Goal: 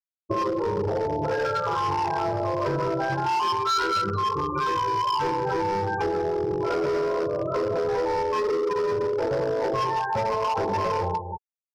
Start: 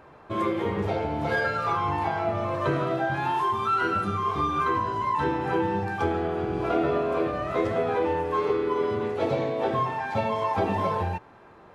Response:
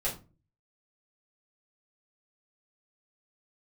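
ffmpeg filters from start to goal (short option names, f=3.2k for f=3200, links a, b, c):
-filter_complex "[0:a]highpass=120,bandreject=f=1.9k:w=24,aecho=1:1:2.1:0.61,asplit=2[a][b];[b]alimiter=limit=-19.5dB:level=0:latency=1:release=68,volume=2.5dB[c];[a][c]amix=inputs=2:normalize=0,adynamicsmooth=sensitivity=1:basefreq=720,afftfilt=real='re*gte(hypot(re,im),0.126)':imag='im*gte(hypot(re,im),0.126)':win_size=1024:overlap=0.75,aecho=1:1:29.15|186.6:0.251|0.251,asoftclip=type=hard:threshold=-16.5dB,acompressor=threshold=-31dB:ratio=4,equalizer=f=5.2k:w=2.7:g=14,volume=5.5dB"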